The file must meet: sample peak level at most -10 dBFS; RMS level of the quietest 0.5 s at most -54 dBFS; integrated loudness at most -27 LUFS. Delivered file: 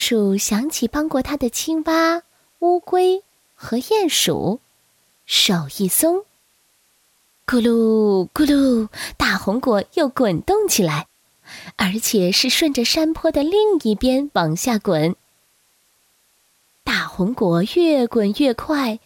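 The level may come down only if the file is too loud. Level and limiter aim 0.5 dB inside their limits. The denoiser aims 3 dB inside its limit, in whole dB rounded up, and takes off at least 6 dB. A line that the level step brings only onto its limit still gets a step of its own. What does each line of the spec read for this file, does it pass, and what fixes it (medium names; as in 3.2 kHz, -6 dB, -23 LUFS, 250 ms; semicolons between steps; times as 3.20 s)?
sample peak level -3.5 dBFS: fail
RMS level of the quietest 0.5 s -61 dBFS: pass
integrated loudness -18.5 LUFS: fail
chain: trim -9 dB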